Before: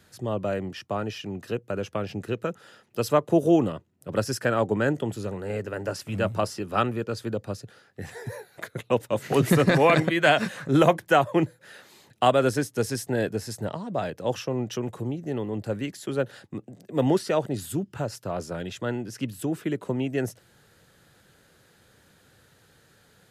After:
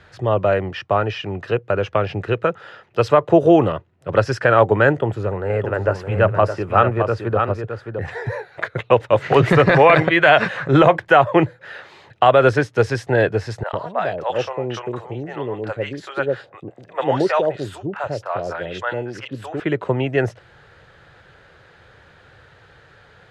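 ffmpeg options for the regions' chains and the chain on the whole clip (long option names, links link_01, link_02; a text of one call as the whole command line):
ffmpeg -i in.wav -filter_complex "[0:a]asettb=1/sr,asplit=3[link_01][link_02][link_03];[link_01]atrim=end=4.984[link_04];[link_02]atrim=start=4.98:end=8.08,asetpts=PTS-STARTPTS,afade=type=in:duration=0.004:curve=qsin,afade=type=out:start_time=3.096:duration=0.004:curve=qsin,equalizer=frequency=4100:width=0.72:gain=-8,aecho=1:1:615:0.422,atrim=end_sample=136710[link_05];[link_03]atrim=start=8.076[link_06];[link_04][link_05]acrossfade=duration=0.004:curve1=hsin:curve2=qsin[link_07];[link_07][link_06]acrossfade=duration=0.004:curve1=qsin:curve2=hsin,asettb=1/sr,asplit=3[link_08][link_09][link_10];[link_08]atrim=end=13.634[link_11];[link_09]atrim=start=13.63:end=19.6,asetpts=PTS-STARTPTS,afade=type=in:duration=0.004:curve=qsin,afade=type=out:start_time=5.966:duration=0.004:curve=qsin,lowshelf=frequency=210:gain=-11,acrossover=split=610|2800[link_12][link_13][link_14];[link_14]adelay=30[link_15];[link_12]adelay=100[link_16];[link_16][link_13][link_15]amix=inputs=3:normalize=0,atrim=end_sample=263277[link_17];[link_10]atrim=start=19.596[link_18];[link_11][link_17]acrossfade=duration=0.004:curve1=hsin:curve2=qsin[link_19];[link_19][link_18]acrossfade=duration=0.004:curve1=qsin:curve2=hsin,lowpass=2500,equalizer=frequency=230:width=1.2:gain=-13,alimiter=level_in=14.5dB:limit=-1dB:release=50:level=0:latency=1,volume=-1dB" out.wav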